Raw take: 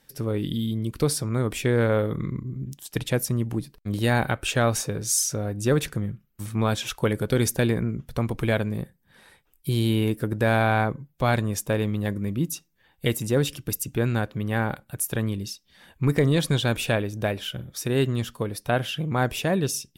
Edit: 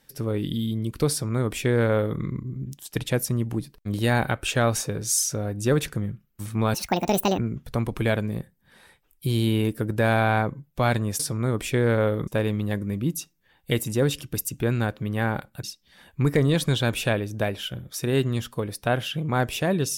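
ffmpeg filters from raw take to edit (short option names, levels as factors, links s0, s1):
-filter_complex "[0:a]asplit=6[s0][s1][s2][s3][s4][s5];[s0]atrim=end=6.744[s6];[s1]atrim=start=6.74:end=7.81,asetpts=PTS-STARTPTS,asetrate=73206,aresample=44100[s7];[s2]atrim=start=7.806:end=11.622[s8];[s3]atrim=start=1.108:end=2.192[s9];[s4]atrim=start=11.618:end=14.982[s10];[s5]atrim=start=15.458[s11];[s6][s7]acrossfade=d=0.004:c1=hsin:c2=hsin[s12];[s12][s8]acrossfade=d=0.004:c1=hsin:c2=hsin[s13];[s13][s9]acrossfade=d=0.004:c1=hsin:c2=hsin[s14];[s14][s10]acrossfade=d=0.004:c1=hsin:c2=hsin[s15];[s15][s11]acrossfade=d=0.004:c1=hsin:c2=hsin"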